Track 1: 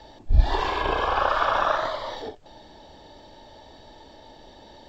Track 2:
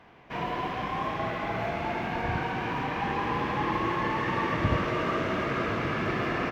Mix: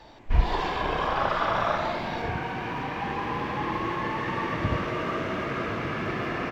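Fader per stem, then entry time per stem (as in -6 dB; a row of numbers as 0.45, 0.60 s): -4.0, -1.0 dB; 0.00, 0.00 s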